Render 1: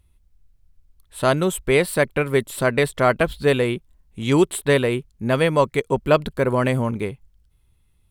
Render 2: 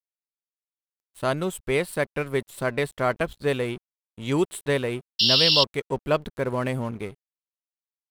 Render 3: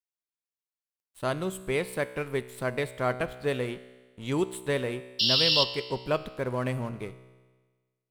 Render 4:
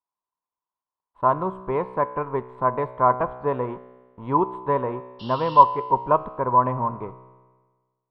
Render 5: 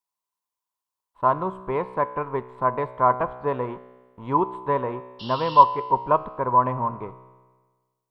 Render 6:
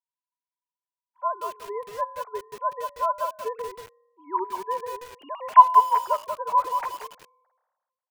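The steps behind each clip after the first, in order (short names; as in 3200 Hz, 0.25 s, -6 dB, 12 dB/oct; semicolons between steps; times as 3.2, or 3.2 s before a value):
painted sound noise, 5.19–5.64, 2700–5600 Hz -13 dBFS; crossover distortion -38.5 dBFS; gain -6 dB
resonator 63 Hz, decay 1.4 s, harmonics all, mix 60%; gain +2.5 dB
synth low-pass 1000 Hz, resonance Q 12; gain +2 dB
high shelf 2700 Hz +9 dB; gain -1.5 dB
sine-wave speech; lo-fi delay 0.184 s, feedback 35%, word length 6-bit, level -5 dB; gain -2.5 dB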